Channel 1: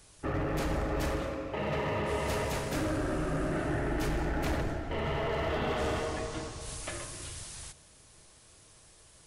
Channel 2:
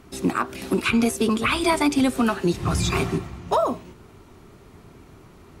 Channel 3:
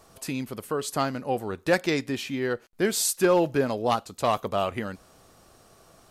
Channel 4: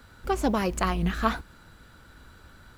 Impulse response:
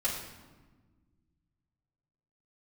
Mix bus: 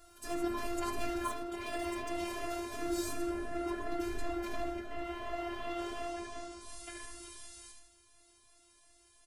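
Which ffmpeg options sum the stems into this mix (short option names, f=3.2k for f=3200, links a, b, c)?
-filter_complex "[0:a]volume=-2.5dB,asplit=2[a][b];[b]volume=-4.5dB[c];[1:a]bass=f=250:g=6,treble=f=4k:g=6,acompressor=threshold=-20dB:ratio=2,aeval=exprs='(tanh(15.8*val(0)+0.6)-tanh(0.6))/15.8':c=same,adelay=150,volume=-11dB[d];[2:a]acompressor=threshold=-38dB:ratio=2.5,asoftclip=type=hard:threshold=-31dB,volume=-5.5dB,asplit=2[e][f];[f]volume=-5.5dB[g];[3:a]volume=-8dB,asplit=2[h][i];[i]volume=-11.5dB[j];[4:a]atrim=start_sample=2205[k];[g][j]amix=inputs=2:normalize=0[l];[l][k]afir=irnorm=-1:irlink=0[m];[c]aecho=0:1:75|150|225|300|375|450:1|0.46|0.212|0.0973|0.0448|0.0206[n];[a][d][e][h][m][n]amix=inputs=6:normalize=0,afftfilt=real='hypot(re,im)*cos(PI*b)':imag='0':win_size=512:overlap=0.75,asplit=2[o][p];[p]adelay=4,afreqshift=2.8[q];[o][q]amix=inputs=2:normalize=1"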